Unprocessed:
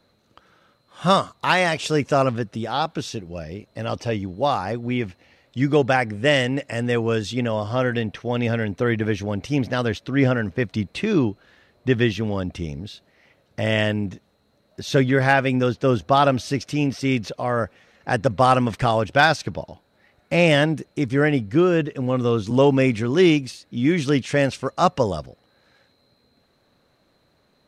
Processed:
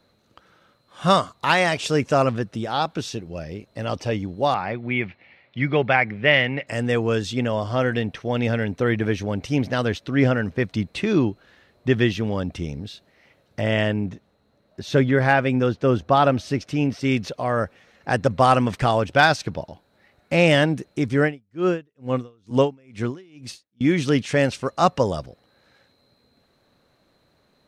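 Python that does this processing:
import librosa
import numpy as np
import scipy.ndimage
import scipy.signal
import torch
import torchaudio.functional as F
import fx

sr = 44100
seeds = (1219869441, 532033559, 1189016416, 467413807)

y = fx.cabinet(x, sr, low_hz=110.0, low_slope=12, high_hz=3800.0, hz=(280.0, 480.0, 2200.0), db=(-6, -4, 9), at=(4.54, 6.67))
y = fx.high_shelf(y, sr, hz=3700.0, db=-7.5, at=(13.61, 17.04))
y = fx.tremolo_db(y, sr, hz=2.2, depth_db=38, at=(21.23, 23.81))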